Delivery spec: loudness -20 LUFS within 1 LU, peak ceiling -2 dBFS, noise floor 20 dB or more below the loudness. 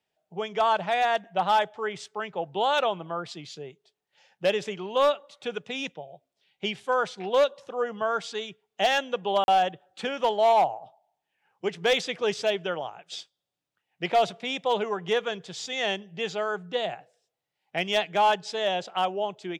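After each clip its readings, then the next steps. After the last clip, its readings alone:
clipped 0.5%; flat tops at -15.5 dBFS; dropouts 1; longest dropout 41 ms; loudness -27.0 LUFS; peak -15.5 dBFS; loudness target -20.0 LUFS
-> clip repair -15.5 dBFS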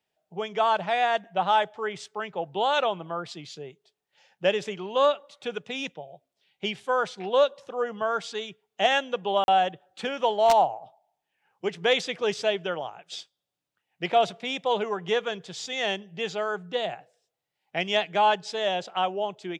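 clipped 0.0%; dropouts 1; longest dropout 41 ms
-> interpolate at 9.44, 41 ms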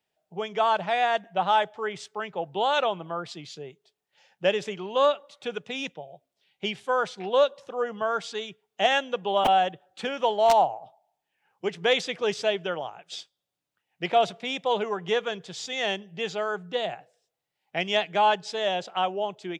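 dropouts 0; loudness -26.5 LUFS; peak -6.5 dBFS; loudness target -20.0 LUFS
-> gain +6.5 dB; limiter -2 dBFS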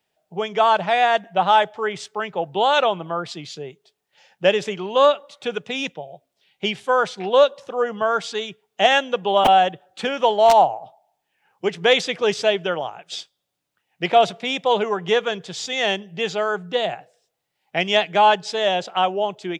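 loudness -20.5 LUFS; peak -2.0 dBFS; noise floor -77 dBFS

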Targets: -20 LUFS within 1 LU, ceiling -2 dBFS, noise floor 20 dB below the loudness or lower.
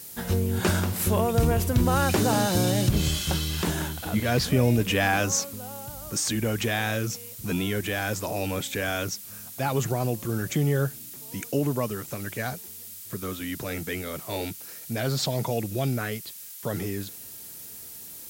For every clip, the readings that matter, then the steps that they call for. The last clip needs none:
noise floor -42 dBFS; noise floor target -47 dBFS; loudness -27.0 LUFS; peak -10.0 dBFS; loudness target -20.0 LUFS
-> denoiser 6 dB, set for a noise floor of -42 dBFS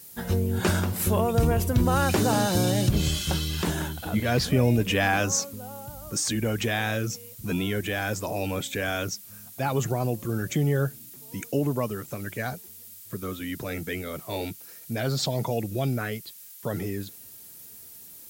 noise floor -46 dBFS; noise floor target -47 dBFS
-> denoiser 6 dB, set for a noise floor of -46 dBFS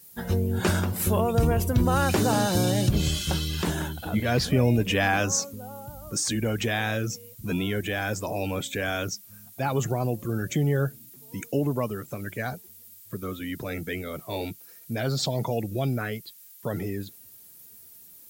noise floor -50 dBFS; loudness -27.0 LUFS; peak -10.0 dBFS; loudness target -20.0 LUFS
-> gain +7 dB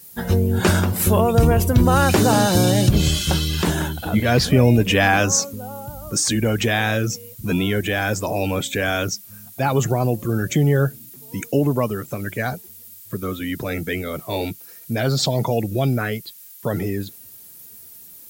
loudness -20.0 LUFS; peak -3.0 dBFS; noise floor -43 dBFS

